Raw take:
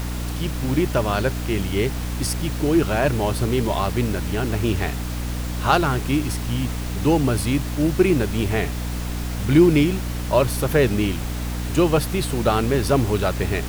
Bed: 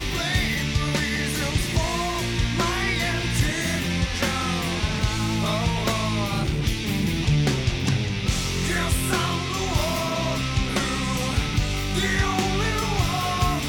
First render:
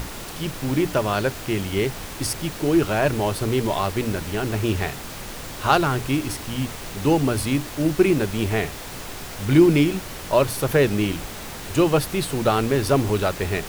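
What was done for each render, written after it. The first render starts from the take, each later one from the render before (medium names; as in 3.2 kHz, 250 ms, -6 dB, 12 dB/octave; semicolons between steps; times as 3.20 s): hum notches 60/120/180/240/300 Hz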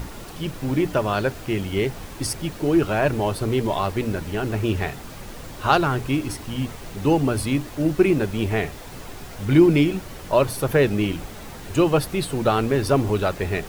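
noise reduction 7 dB, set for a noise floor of -35 dBFS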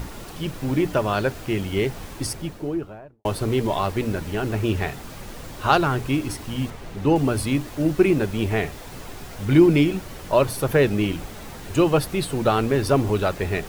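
2.08–3.25 s: studio fade out; 6.70–7.16 s: treble shelf 4.5 kHz -9 dB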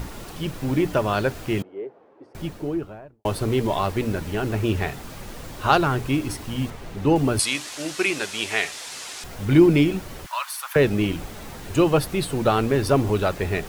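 1.62–2.35 s: ladder band-pass 540 Hz, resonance 35%; 7.39–9.24 s: frequency weighting ITU-R 468; 10.26–10.76 s: steep high-pass 970 Hz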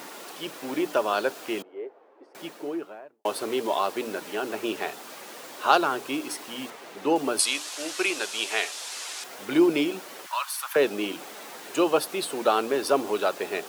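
Bessel high-pass 430 Hz, order 4; dynamic bell 2 kHz, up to -6 dB, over -42 dBFS, Q 2.7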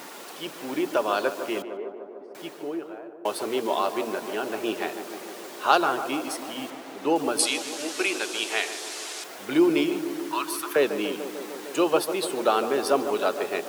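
tape echo 149 ms, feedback 86%, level -9 dB, low-pass 1.4 kHz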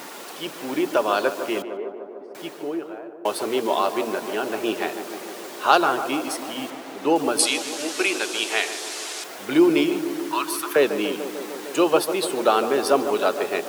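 trim +3.5 dB; peak limiter -1 dBFS, peak gain reduction 1 dB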